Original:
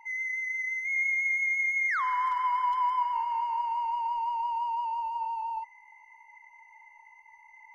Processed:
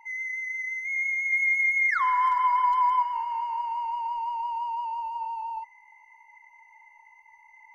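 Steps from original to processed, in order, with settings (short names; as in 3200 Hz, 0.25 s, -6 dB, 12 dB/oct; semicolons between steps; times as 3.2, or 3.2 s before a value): 1.32–3.02 comb 2.9 ms, depth 90%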